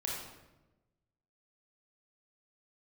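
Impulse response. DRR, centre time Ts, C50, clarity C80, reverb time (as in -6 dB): -3.5 dB, 64 ms, 0.5 dB, 3.5 dB, 1.1 s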